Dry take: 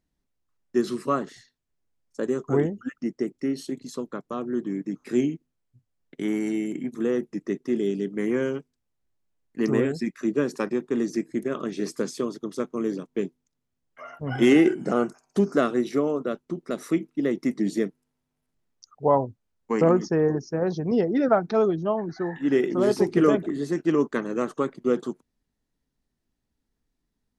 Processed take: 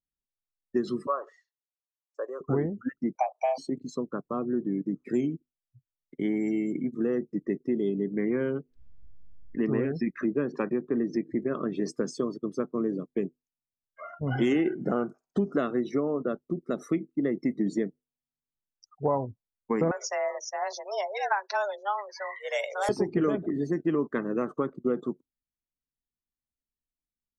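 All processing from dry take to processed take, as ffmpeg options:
ffmpeg -i in.wav -filter_complex "[0:a]asettb=1/sr,asplit=3[link_01][link_02][link_03];[link_01]atrim=end=1.074[link_04];[link_02]atrim=start=1.07:end=2.41,asetpts=PTS-STARTPTS,afade=type=in:duration=0.004:curve=qsin,afade=type=out:start_time=1.336:duration=0.004:curve=qsin,acompressor=threshold=-37dB:ratio=1.5:attack=3.2:release=140:knee=1:detection=peak,highpass=frequency=480:width=0.5412,highpass=frequency=480:width=1.3066,equalizer=frequency=560:width_type=q:width=4:gain=7,equalizer=frequency=1100:width_type=q:width=4:gain=8,equalizer=frequency=3800:width_type=q:width=4:gain=-6,lowpass=frequency=7800:width=0.5412,lowpass=frequency=7800:width=1.3066[link_05];[link_03]atrim=start=2.406[link_06];[link_04][link_05]acrossfade=duration=0.004:curve1=hsin:curve2=qsin[link_07];[link_07][link_06]acrossfade=duration=0.004:curve1=qsin:curve2=hsin,asettb=1/sr,asplit=3[link_08][link_09][link_10];[link_08]atrim=end=3.154[link_11];[link_09]atrim=start=3.15:end=3.58,asetpts=PTS-STARTPTS,afade=type=in:duration=0.004:curve=qsin,afade=type=out:start_time=0.426:duration=0.004:curve=qsin,equalizer=frequency=920:width=0.69:gain=14,afreqshift=380[link_12];[link_10]atrim=start=3.576[link_13];[link_11][link_12]acrossfade=duration=0.004:curve1=hsin:curve2=qsin[link_14];[link_14][link_13]acrossfade=duration=0.004:curve1=qsin:curve2=hsin,asettb=1/sr,asplit=3[link_15][link_16][link_17];[link_15]atrim=end=7.894[link_18];[link_16]atrim=start=7.89:end=11.76,asetpts=PTS-STARTPTS,afade=type=in:duration=0.004:curve=qsin,afade=type=out:start_time=3.866:duration=0.004:curve=qsin,lowpass=3900,acompressor=mode=upward:threshold=-27dB:ratio=2.5:attack=3.2:release=140:knee=2.83:detection=peak[link_19];[link_17]atrim=start=11.756[link_20];[link_18][link_19]acrossfade=duration=0.004:curve1=hsin:curve2=qsin[link_21];[link_21][link_20]acrossfade=duration=0.004:curve1=qsin:curve2=hsin,asettb=1/sr,asplit=3[link_22][link_23][link_24];[link_22]atrim=end=19.914[link_25];[link_23]atrim=start=19.91:end=22.89,asetpts=PTS-STARTPTS,afade=type=in:duration=0.004:curve=qsin,afade=type=out:start_time=2.976:duration=0.004:curve=qsin,highpass=640,aemphasis=mode=production:type=75kf,afreqshift=200[link_26];[link_24]atrim=start=22.886[link_27];[link_25][link_26]acrossfade=duration=0.004:curve1=hsin:curve2=qsin[link_28];[link_28][link_27]acrossfade=duration=0.004:curve1=qsin:curve2=hsin,afftdn=noise_reduction=23:noise_floor=-41,lowshelf=frequency=140:gain=5,acompressor=threshold=-24dB:ratio=3" out.wav

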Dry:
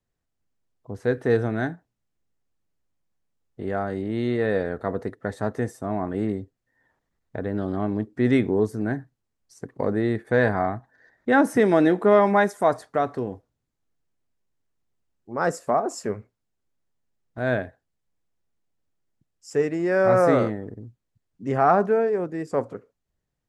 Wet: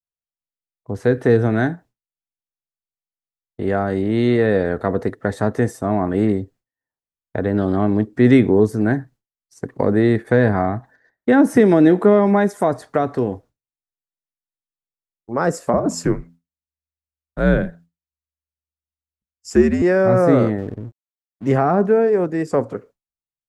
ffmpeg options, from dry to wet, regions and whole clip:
ffmpeg -i in.wav -filter_complex "[0:a]asettb=1/sr,asplit=3[link_01][link_02][link_03];[link_01]atrim=end=15.734[link_04];[link_02]atrim=start=15.73:end=19.82,asetpts=PTS-STARTPTS,afade=type=in:duration=0.004:curve=qsin,afade=type=out:start_time=4.086:duration=0.004:curve=qsin,equalizer=frequency=270:width=4.7:gain=8.5,afreqshift=-74,bandreject=frequency=84.56:width_type=h:width=4,bandreject=frequency=169.12:width_type=h:width=4,bandreject=frequency=253.68:width_type=h:width=4[link_05];[link_03]atrim=start=19.816[link_06];[link_04][link_05]acrossfade=duration=0.004:curve1=hsin:curve2=qsin[link_07];[link_07][link_06]acrossfade=duration=0.004:curve1=qsin:curve2=hsin,asettb=1/sr,asplit=3[link_08][link_09][link_10];[link_08]atrim=end=20.584[link_11];[link_09]atrim=start=20.58:end=21.56,asetpts=PTS-STARTPTS,afade=type=in:duration=0.004:curve=qsin,afade=type=out:start_time=0.976:duration=0.004:curve=qsin,lowshelf=frequency=100:gain=4.5,aeval=exprs='sgn(val(0))*max(abs(val(0))-0.00266,0)':channel_layout=same[link_12];[link_10]atrim=start=21.556[link_13];[link_11][link_12]acrossfade=duration=0.004:curve1=hsin:curve2=qsin[link_14];[link_14][link_13]acrossfade=duration=0.004:curve1=qsin:curve2=hsin,agate=range=-33dB:threshold=-47dB:ratio=3:detection=peak,acrossover=split=410[link_15][link_16];[link_16]acompressor=threshold=-27dB:ratio=6[link_17];[link_15][link_17]amix=inputs=2:normalize=0,volume=8.5dB" out.wav

